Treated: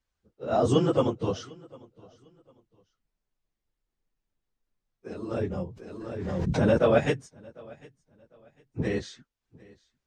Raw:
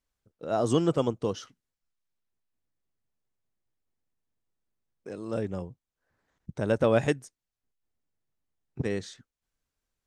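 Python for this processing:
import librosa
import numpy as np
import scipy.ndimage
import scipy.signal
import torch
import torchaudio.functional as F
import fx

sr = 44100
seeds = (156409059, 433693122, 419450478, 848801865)

p1 = fx.phase_scramble(x, sr, seeds[0], window_ms=50)
p2 = scipy.signal.sosfilt(scipy.signal.butter(2, 6200.0, 'lowpass', fs=sr, output='sos'), p1)
p3 = p2 + fx.echo_feedback(p2, sr, ms=751, feedback_pct=28, wet_db=-24, dry=0)
p4 = fx.pre_swell(p3, sr, db_per_s=27.0, at=(5.6, 6.77), fade=0.02)
y = p4 * librosa.db_to_amplitude(2.0)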